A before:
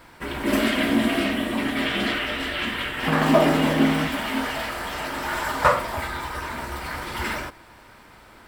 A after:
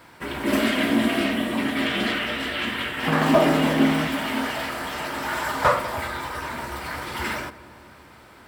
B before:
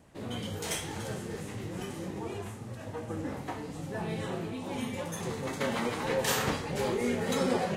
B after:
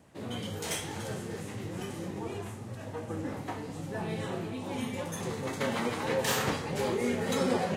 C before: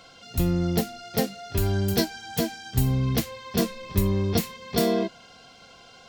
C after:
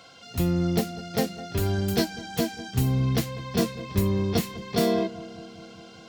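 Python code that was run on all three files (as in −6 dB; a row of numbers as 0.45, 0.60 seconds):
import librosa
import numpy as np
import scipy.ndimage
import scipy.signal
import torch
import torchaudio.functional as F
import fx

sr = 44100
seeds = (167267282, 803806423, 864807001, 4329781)

y = scipy.signal.sosfilt(scipy.signal.butter(2, 73.0, 'highpass', fs=sr, output='sos'), x)
y = fx.echo_filtered(y, sr, ms=200, feedback_pct=76, hz=1100.0, wet_db=-16.5)
y = fx.slew_limit(y, sr, full_power_hz=270.0)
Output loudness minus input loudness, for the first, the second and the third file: 0.0, 0.0, −0.5 LU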